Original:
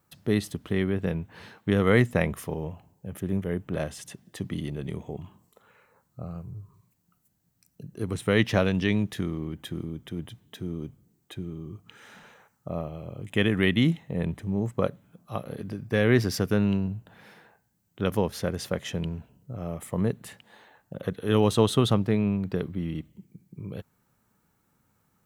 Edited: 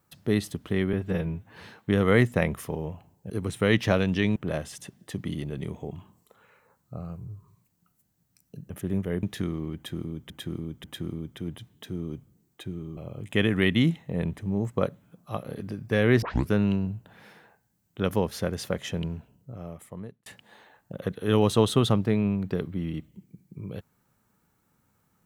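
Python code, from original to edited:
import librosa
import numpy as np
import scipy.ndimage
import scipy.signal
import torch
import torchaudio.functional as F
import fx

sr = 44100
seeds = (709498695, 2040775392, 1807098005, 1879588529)

y = fx.edit(x, sr, fx.stretch_span(start_s=0.93, length_s=0.42, factor=1.5),
    fx.swap(start_s=3.09, length_s=0.53, other_s=7.96, other_length_s=1.06),
    fx.repeat(start_s=9.55, length_s=0.54, count=3),
    fx.cut(start_s=11.68, length_s=1.3),
    fx.tape_start(start_s=16.23, length_s=0.27),
    fx.fade_out_span(start_s=19.14, length_s=1.13), tone=tone)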